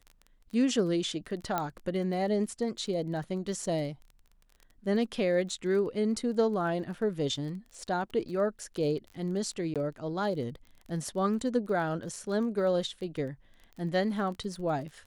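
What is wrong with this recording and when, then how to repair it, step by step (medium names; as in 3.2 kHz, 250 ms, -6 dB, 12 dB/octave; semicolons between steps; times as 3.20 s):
crackle 21 per s -39 dBFS
1.58 s: pop -15 dBFS
9.74–9.76 s: dropout 17 ms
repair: de-click; interpolate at 9.74 s, 17 ms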